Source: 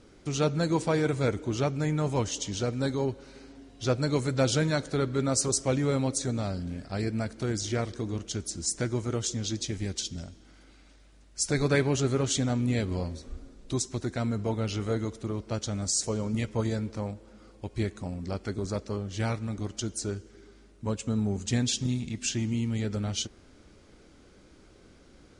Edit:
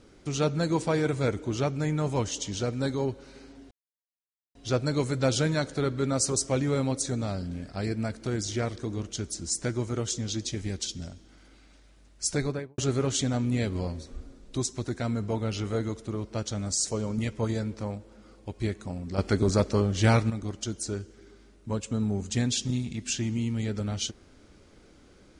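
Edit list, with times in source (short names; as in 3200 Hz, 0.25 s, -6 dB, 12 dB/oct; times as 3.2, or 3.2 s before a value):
3.71 insert silence 0.84 s
11.45–11.94 studio fade out
18.34–19.46 gain +8.5 dB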